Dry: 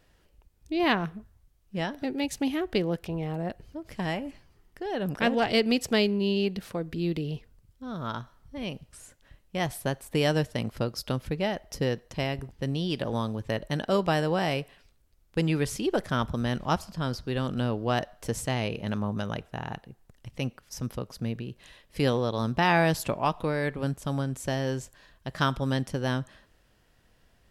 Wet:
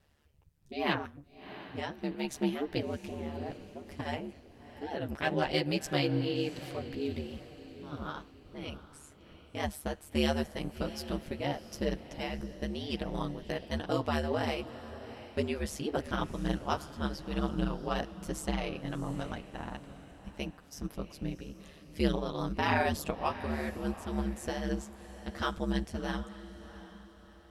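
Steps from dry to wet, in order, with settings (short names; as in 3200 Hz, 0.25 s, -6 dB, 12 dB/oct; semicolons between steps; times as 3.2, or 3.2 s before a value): chorus voices 2, 1 Hz, delay 11 ms, depth 3.7 ms; ring modulator 73 Hz; diffused feedback echo 0.701 s, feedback 41%, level -14 dB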